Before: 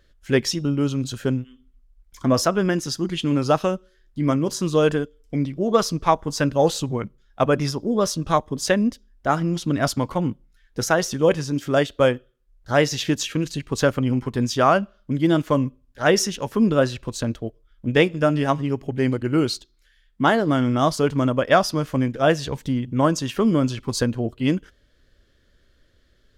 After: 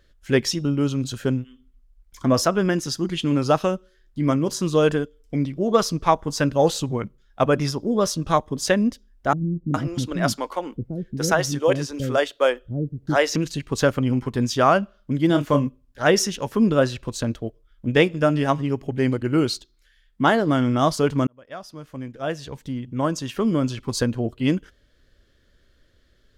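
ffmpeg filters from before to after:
-filter_complex "[0:a]asettb=1/sr,asplit=3[a][b][c];[a]atrim=end=9.334[d];[b]atrim=start=9.33:end=13.36,asetpts=PTS-STARTPTS,afade=t=in:d=0.004:c=qsin,afade=t=out:st=4.026:d=0.004:c=qsin,acrossover=split=330[e][f];[f]adelay=410[g];[e][g]amix=inputs=2:normalize=0,atrim=end_sample=177723[h];[c]atrim=start=13.356[i];[d][h]acrossfade=d=0.004:c1=hsin:c2=qsin[j];[j][i]acrossfade=d=0.004:c1=qsin:c2=hsin,asettb=1/sr,asplit=3[k][l][m];[k]atrim=end=15.274[n];[l]atrim=start=15.27:end=15.67,asetpts=PTS-STARTPTS,afade=t=in:d=0.004:c=qsin,afade=t=out:st=0.396:d=0.004:c=qsin,asplit=2[o][p];[p]adelay=28,volume=-8dB[q];[o][q]amix=inputs=2:normalize=0,atrim=end_sample=17640[r];[m]atrim=start=15.666[s];[n][r]acrossfade=d=0.004:c1=hsin:c2=qsin[t];[t][s]acrossfade=d=0.004:c1=qsin:c2=hsin,asplit=2[u][v];[u]atrim=end=21.27,asetpts=PTS-STARTPTS,afade=t=out:st=21.266:d=0.004:c=hsin[w];[v]atrim=start=21.27,asetpts=PTS-STARTPTS,afade=t=in:d=2.93[x];[w][x]concat=n=2:v=0:a=1"

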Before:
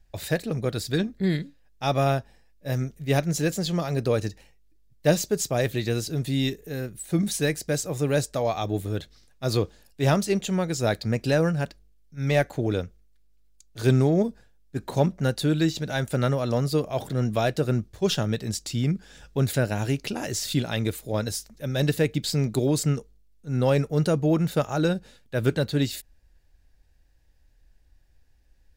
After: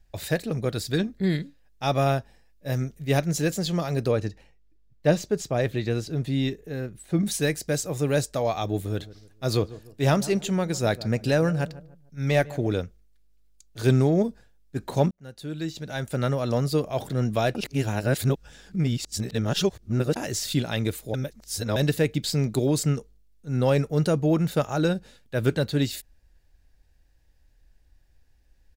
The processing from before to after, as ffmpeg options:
-filter_complex "[0:a]asettb=1/sr,asplit=3[a][b][c];[a]atrim=end=4.114[d];[b]atrim=start=4.11:end=7.26,asetpts=PTS-STARTPTS,afade=t=in:d=0.004:c=qsin,afade=t=out:st=3.146:d=0.004:c=qsin,lowpass=f=2.7k:p=1[e];[c]atrim=start=7.256[f];[d][e]acrossfade=d=0.004:c1=hsin:c2=qsin[g];[g][f]acrossfade=d=0.004:c1=qsin:c2=hsin,asplit=3[h][i][j];[h]afade=t=out:st=8.9:d=0.02[k];[i]asplit=2[l][m];[m]adelay=149,lowpass=f=1.1k:p=1,volume=-17dB,asplit=2[n][o];[o]adelay=149,lowpass=f=1.1k:p=1,volume=0.4,asplit=2[p][q];[q]adelay=149,lowpass=f=1.1k:p=1,volume=0.4[r];[l][n][p][r]amix=inputs=4:normalize=0,afade=t=in:st=8.9:d=0.02,afade=t=out:st=12.69:d=0.02[s];[j]afade=t=in:st=12.69:d=0.02[t];[k][s][t]amix=inputs=3:normalize=0,asplit=6[u][v][w][x][y][z];[u]atrim=end=15.11,asetpts=PTS-STARTPTS,afade=t=out:st=15.106:d=0.004:c=hsin[aa];[v]atrim=start=15.11:end=17.552,asetpts=PTS-STARTPTS,afade=t=in:d=1.38[ab];[w]atrim=start=17.548:end=20.162,asetpts=PTS-STARTPTS,areverse[ac];[x]atrim=start=20.158:end=21.142[ad];[y]atrim=start=21.138:end=21.762,asetpts=PTS-STARTPTS,areverse[ae];[z]atrim=start=21.758[af];[aa][ab]concat=n=2:v=0:a=1[ag];[ag][ac]acrossfade=d=0.004:c1=hsin:c2=hsin[ah];[ah][ad]acrossfade=d=0.004:c1=hsin:c2=hsin[ai];[ai][ae]acrossfade=d=0.004:c1=hsin:c2=hsin[aj];[aj][af]acrossfade=d=0.004:c1=hsin:c2=hsin"

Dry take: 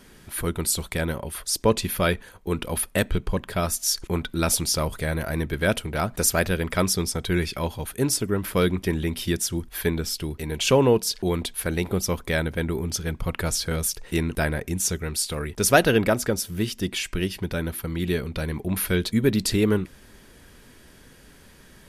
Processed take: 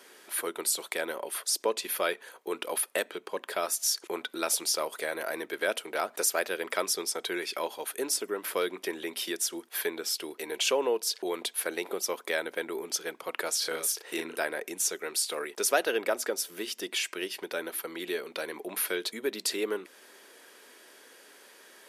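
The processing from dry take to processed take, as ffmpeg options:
-filter_complex "[0:a]asettb=1/sr,asplit=3[a][b][c];[a]atrim=end=13.584[d];[b]atrim=start=13.58:end=14.39,asetpts=PTS-STARTPTS,afade=t=in:d=0.004:c=qsin,afade=t=out:st=0.806:d=0.004:c=qsin,asplit=2[e][f];[f]adelay=37,volume=-3.5dB[g];[e][g]amix=inputs=2:normalize=0,atrim=end_sample=35721[h];[c]atrim=start=14.386[i];[d][h]acrossfade=d=0.004:c1=hsin:c2=qsin[j];[j][i]acrossfade=d=0.004:c1=qsin:c2=hsin,acompressor=threshold=-27dB:ratio=2,highpass=f=370:w=0.5412,highpass=f=370:w=1.3066"

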